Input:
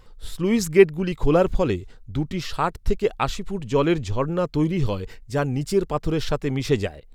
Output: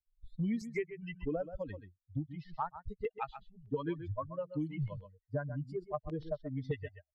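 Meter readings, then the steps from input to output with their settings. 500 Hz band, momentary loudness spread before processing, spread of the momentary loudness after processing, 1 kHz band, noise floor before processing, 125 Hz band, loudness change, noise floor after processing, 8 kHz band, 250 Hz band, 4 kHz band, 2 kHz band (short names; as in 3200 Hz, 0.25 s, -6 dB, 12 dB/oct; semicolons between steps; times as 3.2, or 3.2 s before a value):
-18.0 dB, 10 LU, 7 LU, -14.5 dB, -47 dBFS, -14.0 dB, -16.0 dB, under -85 dBFS, under -25 dB, -15.5 dB, -25.5 dB, -17.0 dB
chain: per-bin expansion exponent 3; low-pass opened by the level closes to 440 Hz, open at -18.5 dBFS; thirty-one-band EQ 630 Hz +5 dB, 1250 Hz -4 dB, 2000 Hz +7 dB; compressor 3:1, threshold -25 dBFS, peak gain reduction 12 dB; LFO notch square 0.82 Hz 200–2700 Hz; on a send: echo 0.129 s -13.5 dB; on the sum: three-band squash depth 100%; gain -6 dB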